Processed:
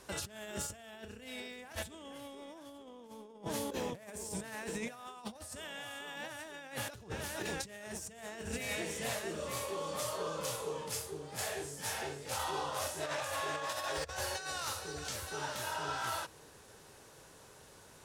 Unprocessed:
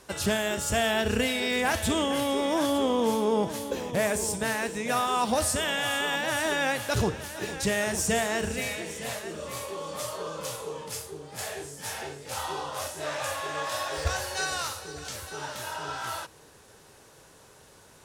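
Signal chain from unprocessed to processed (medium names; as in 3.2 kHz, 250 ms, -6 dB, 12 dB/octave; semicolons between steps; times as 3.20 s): compressor with a negative ratio -33 dBFS, ratio -0.5; trim -7 dB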